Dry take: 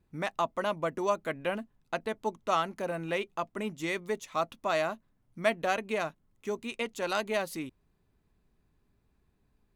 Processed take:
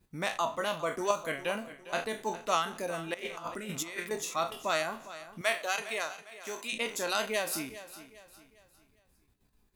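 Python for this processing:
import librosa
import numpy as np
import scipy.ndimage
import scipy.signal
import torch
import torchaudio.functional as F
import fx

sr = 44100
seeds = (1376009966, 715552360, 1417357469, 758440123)

p1 = fx.spec_trails(x, sr, decay_s=0.65)
p2 = fx.highpass(p1, sr, hz=770.0, slope=6, at=(5.41, 6.73))
p3 = fx.level_steps(p2, sr, step_db=23)
p4 = p2 + (p3 * librosa.db_to_amplitude(-1.0))
p5 = fx.dereverb_blind(p4, sr, rt60_s=0.85)
p6 = fx.over_compress(p5, sr, threshold_db=-35.0, ratio=-0.5, at=(3.14, 4.11))
p7 = fx.high_shelf(p6, sr, hz=3200.0, db=10.5)
p8 = p7 + fx.echo_feedback(p7, sr, ms=405, feedback_pct=39, wet_db=-15.0, dry=0)
y = p8 * librosa.db_to_amplitude(-4.0)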